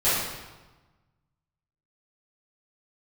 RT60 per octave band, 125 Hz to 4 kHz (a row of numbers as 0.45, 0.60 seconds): 1.8, 1.4, 1.2, 1.2, 1.0, 0.95 seconds